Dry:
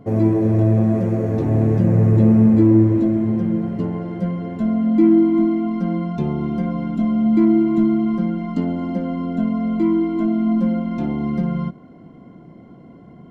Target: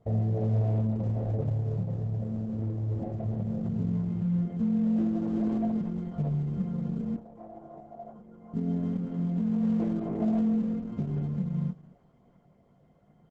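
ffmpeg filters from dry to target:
-filter_complex "[0:a]afwtdn=0.141,aecho=1:1:1.6:0.92,acompressor=threshold=-16dB:ratio=16,alimiter=limit=-19dB:level=0:latency=1:release=173,asettb=1/sr,asplit=3[a][b][c];[a]atrim=end=7.144[d];[b]atrim=start=7.14:end=8.54,asetpts=PTS-STARTPTS,afade=t=in:d=0.004:c=qsin,afade=t=out:st=1.396:d=0.004:c=qsin,bandpass=f=880:t=q:w=2.2:csg=0[e];[c]atrim=start=8.536[f];[d][e]acrossfade=d=0.004:c1=hsin:c2=qsin[g];[g][f]acrossfade=d=0.004:c1=qsin:c2=hsin,flanger=delay=17.5:depth=3.8:speed=0.21,asplit=2[h][i];[i]adelay=215.7,volume=-23dB,highshelf=f=4k:g=-4.85[j];[h][j]amix=inputs=2:normalize=0" -ar 48000 -c:a libopus -b:a 10k

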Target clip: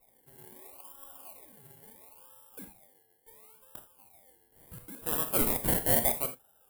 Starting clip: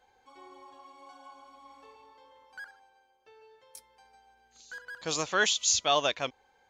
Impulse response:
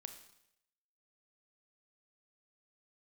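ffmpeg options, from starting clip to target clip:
-filter_complex "[0:a]acrusher=samples=28:mix=1:aa=0.000001:lfo=1:lforange=16.8:lforate=0.73,aexciter=amount=8.2:drive=6.2:freq=8.5k[a];[1:a]atrim=start_sample=2205,atrim=end_sample=3969[b];[a][b]afir=irnorm=-1:irlink=0"

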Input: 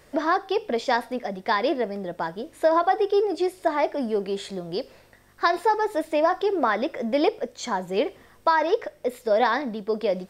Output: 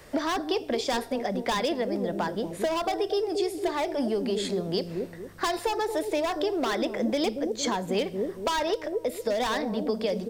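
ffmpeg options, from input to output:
-filter_complex "[0:a]acrossover=split=540[a][b];[a]aecho=1:1:229|458|687|916:0.668|0.214|0.0684|0.0219[c];[b]volume=23dB,asoftclip=hard,volume=-23dB[d];[c][d]amix=inputs=2:normalize=0,acrossover=split=150|3000[e][f][g];[f]acompressor=threshold=-30dB:ratio=6[h];[e][h][g]amix=inputs=3:normalize=0,volume=4.5dB"

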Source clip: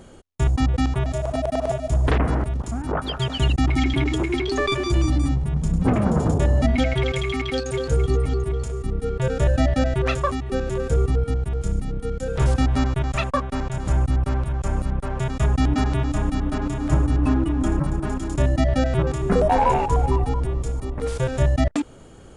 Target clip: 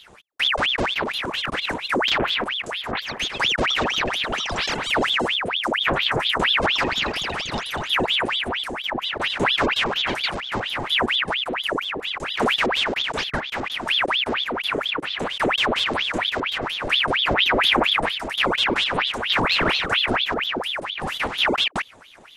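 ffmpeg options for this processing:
-filter_complex "[0:a]asettb=1/sr,asplit=3[a][b][c];[a]atrim=end=17.384[d];[b]atrim=start=17.38:end=18.09,asetpts=PTS-STARTPTS,afade=t=in:d=0.004:c=qsin,afade=t=out:st=0.706:d=0.004:c=qsin,acontrast=29[e];[c]atrim=start=18.086[f];[d][e]acrossfade=d=0.004:c1=hsin:c2=qsin[g];[g][f]acrossfade=d=0.004:c1=qsin:c2=hsin,aeval=exprs='val(0)*sin(2*PI*1900*n/s+1900*0.85/4.3*sin(2*PI*4.3*n/s))':c=same"

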